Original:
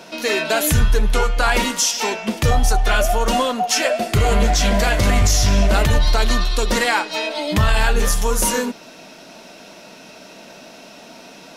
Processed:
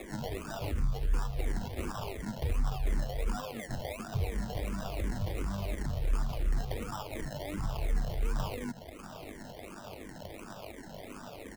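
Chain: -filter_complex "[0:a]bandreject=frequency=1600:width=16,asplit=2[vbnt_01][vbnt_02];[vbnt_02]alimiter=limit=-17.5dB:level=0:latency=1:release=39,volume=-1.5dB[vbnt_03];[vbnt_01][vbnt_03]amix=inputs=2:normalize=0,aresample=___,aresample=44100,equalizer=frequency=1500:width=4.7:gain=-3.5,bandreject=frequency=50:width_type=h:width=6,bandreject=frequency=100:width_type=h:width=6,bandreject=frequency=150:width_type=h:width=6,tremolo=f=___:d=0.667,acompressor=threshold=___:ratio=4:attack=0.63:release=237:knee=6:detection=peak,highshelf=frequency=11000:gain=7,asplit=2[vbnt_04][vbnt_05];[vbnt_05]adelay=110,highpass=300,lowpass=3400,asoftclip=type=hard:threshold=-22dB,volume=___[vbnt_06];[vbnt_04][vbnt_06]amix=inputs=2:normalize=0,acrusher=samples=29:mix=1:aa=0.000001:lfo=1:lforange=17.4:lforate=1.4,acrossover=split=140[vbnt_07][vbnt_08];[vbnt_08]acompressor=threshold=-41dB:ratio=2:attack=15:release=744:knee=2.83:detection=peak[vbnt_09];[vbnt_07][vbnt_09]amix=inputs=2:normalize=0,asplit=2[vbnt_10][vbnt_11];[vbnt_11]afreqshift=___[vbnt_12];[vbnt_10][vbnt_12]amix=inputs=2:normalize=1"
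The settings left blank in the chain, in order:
32000, 100, -21dB, -15dB, -2.8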